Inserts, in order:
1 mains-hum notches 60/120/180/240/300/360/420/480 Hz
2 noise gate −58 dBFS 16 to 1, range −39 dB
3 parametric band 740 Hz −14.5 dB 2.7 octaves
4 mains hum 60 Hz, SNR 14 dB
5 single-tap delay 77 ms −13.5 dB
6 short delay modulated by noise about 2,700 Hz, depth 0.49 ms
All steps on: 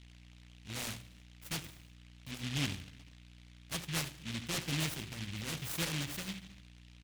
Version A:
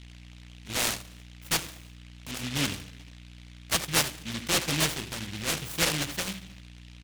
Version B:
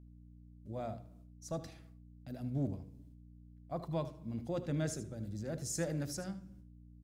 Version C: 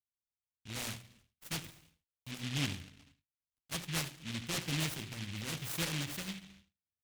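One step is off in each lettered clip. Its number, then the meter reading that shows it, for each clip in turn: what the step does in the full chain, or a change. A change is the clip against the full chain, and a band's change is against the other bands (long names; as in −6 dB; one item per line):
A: 3, 125 Hz band −7.0 dB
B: 6, 4 kHz band −15.5 dB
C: 4, change in momentary loudness spread −6 LU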